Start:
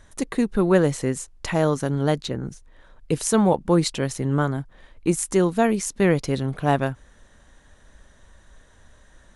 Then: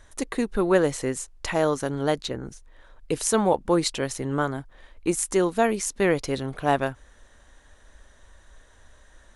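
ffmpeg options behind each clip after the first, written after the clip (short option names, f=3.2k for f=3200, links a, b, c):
-af "equalizer=f=160:w=1.1:g=-9"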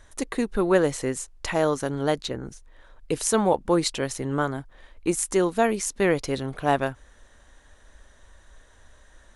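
-af anull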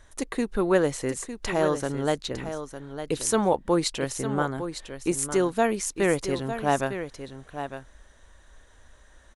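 -af "aecho=1:1:905:0.316,volume=-1.5dB"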